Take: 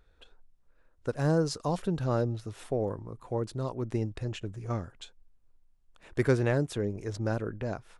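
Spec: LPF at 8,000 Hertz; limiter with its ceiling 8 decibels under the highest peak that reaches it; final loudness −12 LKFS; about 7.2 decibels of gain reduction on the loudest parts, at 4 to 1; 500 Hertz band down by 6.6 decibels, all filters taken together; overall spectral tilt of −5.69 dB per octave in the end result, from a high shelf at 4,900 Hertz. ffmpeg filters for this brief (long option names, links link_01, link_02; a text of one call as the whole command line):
ffmpeg -i in.wav -af "lowpass=8000,equalizer=frequency=500:width_type=o:gain=-8.5,highshelf=frequency=4900:gain=6.5,acompressor=threshold=-31dB:ratio=4,volume=28dB,alimiter=limit=-0.5dB:level=0:latency=1" out.wav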